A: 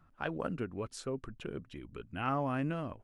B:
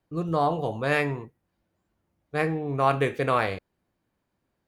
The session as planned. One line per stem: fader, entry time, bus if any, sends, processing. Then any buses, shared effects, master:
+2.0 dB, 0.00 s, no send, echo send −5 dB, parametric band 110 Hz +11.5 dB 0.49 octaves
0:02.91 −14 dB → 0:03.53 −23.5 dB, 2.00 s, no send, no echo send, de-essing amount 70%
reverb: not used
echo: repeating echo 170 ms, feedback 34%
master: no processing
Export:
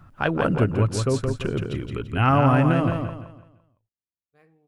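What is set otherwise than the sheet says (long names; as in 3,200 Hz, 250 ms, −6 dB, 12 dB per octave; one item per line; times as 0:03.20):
stem A +2.0 dB → +13.0 dB
stem B −14.0 dB → −23.5 dB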